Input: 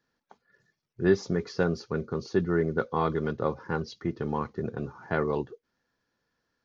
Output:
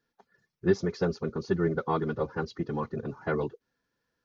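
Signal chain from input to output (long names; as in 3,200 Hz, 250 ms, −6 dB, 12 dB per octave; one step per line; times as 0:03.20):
spectral magnitudes quantised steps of 15 dB
phase-vocoder stretch with locked phases 0.64×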